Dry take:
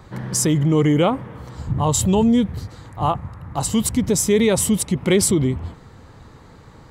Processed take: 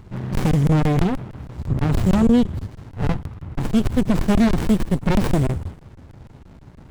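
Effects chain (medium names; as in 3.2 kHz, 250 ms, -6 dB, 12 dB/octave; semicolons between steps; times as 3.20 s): feedback echo behind a high-pass 61 ms, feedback 58%, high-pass 4.5 kHz, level -13 dB; crackling interface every 0.16 s, samples 1024, zero, from 0.35 s; sliding maximum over 65 samples; trim +2.5 dB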